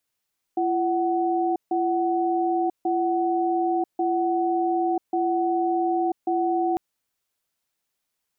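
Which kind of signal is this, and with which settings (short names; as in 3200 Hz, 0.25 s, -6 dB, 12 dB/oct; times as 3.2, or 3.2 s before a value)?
cadence 340 Hz, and 746 Hz, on 0.99 s, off 0.15 s, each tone -23 dBFS 6.20 s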